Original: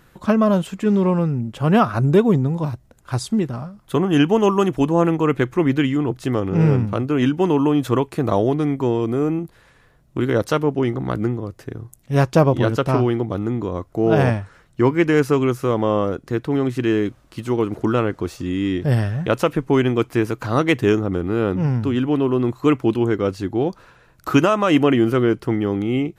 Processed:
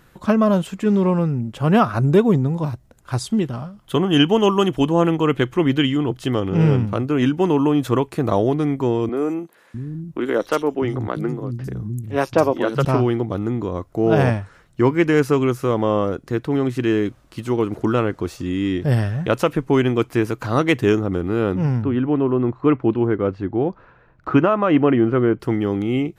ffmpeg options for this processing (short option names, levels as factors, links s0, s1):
-filter_complex "[0:a]asettb=1/sr,asplit=3[s0][s1][s2];[s0]atrim=end=3.274[s3];[s1]atrim=start=3.27:end=6.88,asetpts=PTS-STARTPTS,afade=t=in:d=0.004:c=qsin,afade=t=out:st=3.606:d=0.004:c=qsin,equalizer=f=3100:t=o:w=0.23:g=10[s4];[s2]atrim=start=6.876[s5];[s3][s4]acrossfade=d=0.004:c1=hsin:c2=qsin[s6];[s6][s5]acrossfade=d=0.004:c1=qsin:c2=hsin,asettb=1/sr,asplit=3[s7][s8][s9];[s7]atrim=end=9.094[s10];[s8]atrim=start=9.09:end=12.85,asetpts=PTS-STARTPTS,afade=t=in:d=0.004:c=qsin,afade=t=out:st=3.756:d=0.004:c=qsin,acrossover=split=210|4000[s11][s12][s13];[s13]adelay=50[s14];[s11]adelay=650[s15];[s15][s12][s14]amix=inputs=3:normalize=0,atrim=end_sample=165816[s16];[s9]atrim=start=12.846[s17];[s10][s16]acrossfade=d=0.004:c1=hsin:c2=qsin[s18];[s18][s17]acrossfade=d=0.004:c1=qsin:c2=hsin,asettb=1/sr,asplit=3[s19][s20][s21];[s19]atrim=end=21.824[s22];[s20]atrim=start=21.82:end=25.4,asetpts=PTS-STARTPTS,afade=t=in:d=0.004:c=qsin,afade=t=out:st=3.576:d=0.004:c=qsin,lowpass=1900[s23];[s21]atrim=start=25.396[s24];[s22][s23]acrossfade=d=0.004:c1=hsin:c2=qsin[s25];[s25][s24]acrossfade=d=0.004:c1=qsin:c2=hsin"